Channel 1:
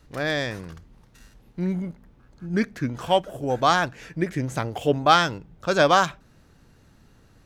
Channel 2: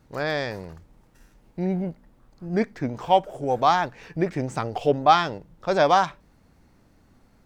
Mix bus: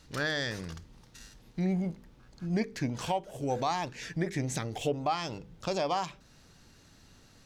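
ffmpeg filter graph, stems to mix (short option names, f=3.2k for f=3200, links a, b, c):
-filter_complex "[0:a]equalizer=f=5.2k:w=0.48:g=12.5,volume=-5.5dB[a];[1:a]bandreject=f=50:t=h:w=6,bandreject=f=100:t=h:w=6,bandreject=f=150:t=h:w=6,bandreject=f=200:t=h:w=6,bandreject=f=250:t=h:w=6,bandreject=f=300:t=h:w=6,bandreject=f=350:t=h:w=6,bandreject=f=400:t=h:w=6,bandreject=f=450:t=h:w=6,bandreject=f=500:t=h:w=6,volume=-6dB,asplit=2[b][c];[c]apad=whole_len=328810[d];[a][d]sidechaincompress=threshold=-35dB:ratio=8:attack=22:release=153[e];[e][b]amix=inputs=2:normalize=0,alimiter=limit=-19.5dB:level=0:latency=1:release=428"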